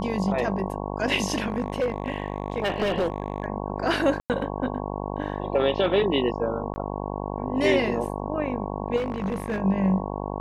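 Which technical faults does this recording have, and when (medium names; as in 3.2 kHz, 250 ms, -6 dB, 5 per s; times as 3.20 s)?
buzz 50 Hz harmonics 22 -31 dBFS
1.40–3.46 s: clipped -19.5 dBFS
4.20–4.30 s: dropout 98 ms
6.74–6.76 s: dropout 20 ms
8.96–9.60 s: clipped -23 dBFS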